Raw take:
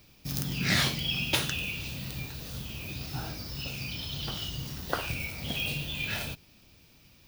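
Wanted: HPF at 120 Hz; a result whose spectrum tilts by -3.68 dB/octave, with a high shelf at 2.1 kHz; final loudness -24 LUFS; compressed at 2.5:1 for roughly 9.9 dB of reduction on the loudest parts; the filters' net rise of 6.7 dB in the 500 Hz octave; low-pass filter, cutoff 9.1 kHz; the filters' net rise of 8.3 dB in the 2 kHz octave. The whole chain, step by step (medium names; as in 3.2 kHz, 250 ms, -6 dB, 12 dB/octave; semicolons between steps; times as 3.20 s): high-pass 120 Hz; low-pass 9.1 kHz; peaking EQ 500 Hz +7.5 dB; peaking EQ 2 kHz +6 dB; treble shelf 2.1 kHz +6.5 dB; compression 2.5:1, threshold -31 dBFS; trim +7.5 dB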